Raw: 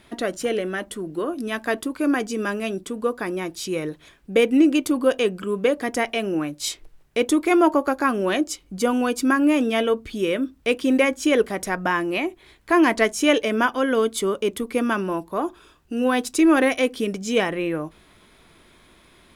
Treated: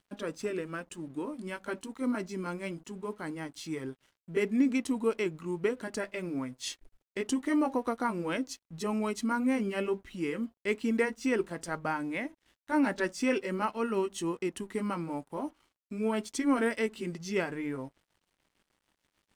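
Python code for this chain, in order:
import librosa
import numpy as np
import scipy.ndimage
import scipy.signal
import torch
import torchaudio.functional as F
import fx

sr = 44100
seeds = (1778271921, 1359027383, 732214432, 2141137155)

y = fx.pitch_heads(x, sr, semitones=-2.5)
y = np.sign(y) * np.maximum(np.abs(y) - 10.0 ** (-51.0 / 20.0), 0.0)
y = y * librosa.db_to_amplitude(-9.0)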